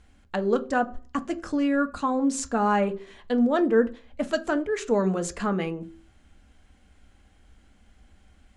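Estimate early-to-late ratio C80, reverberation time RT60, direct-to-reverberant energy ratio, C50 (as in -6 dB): 23.0 dB, 0.45 s, 9.0 dB, 19.0 dB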